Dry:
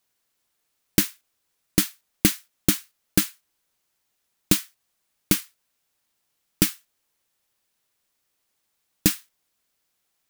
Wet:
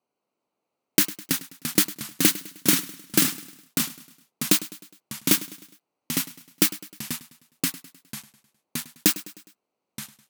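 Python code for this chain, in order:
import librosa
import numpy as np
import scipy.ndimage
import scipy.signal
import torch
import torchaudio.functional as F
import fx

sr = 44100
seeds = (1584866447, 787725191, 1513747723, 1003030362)

p1 = fx.wiener(x, sr, points=25)
p2 = scipy.signal.sosfilt(scipy.signal.butter(2, 240.0, 'highpass', fs=sr, output='sos'), p1)
p3 = fx.over_compress(p2, sr, threshold_db=-23.0, ratio=-1.0)
p4 = p2 + F.gain(torch.from_numpy(p3), -1.0).numpy()
p5 = fx.quant_float(p4, sr, bits=2)
p6 = fx.echo_pitch(p5, sr, ms=207, semitones=-2, count=3, db_per_echo=-6.0)
p7 = p6 + fx.echo_feedback(p6, sr, ms=103, feedback_pct=50, wet_db=-17.5, dry=0)
y = F.gain(torch.from_numpy(p7), -1.5).numpy()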